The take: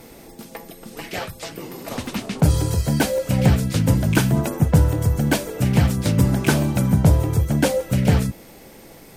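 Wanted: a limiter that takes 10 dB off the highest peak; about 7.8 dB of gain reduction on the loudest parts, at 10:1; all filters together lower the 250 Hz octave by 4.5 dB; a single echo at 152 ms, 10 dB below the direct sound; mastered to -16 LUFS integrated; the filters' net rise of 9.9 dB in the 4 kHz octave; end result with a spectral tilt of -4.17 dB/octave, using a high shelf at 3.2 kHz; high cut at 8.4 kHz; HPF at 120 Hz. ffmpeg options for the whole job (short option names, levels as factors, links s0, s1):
-af "highpass=120,lowpass=8400,equalizer=f=250:t=o:g=-6,highshelf=f=3200:g=6.5,equalizer=f=4000:t=o:g=8,acompressor=threshold=0.0891:ratio=10,alimiter=limit=0.119:level=0:latency=1,aecho=1:1:152:0.316,volume=3.98"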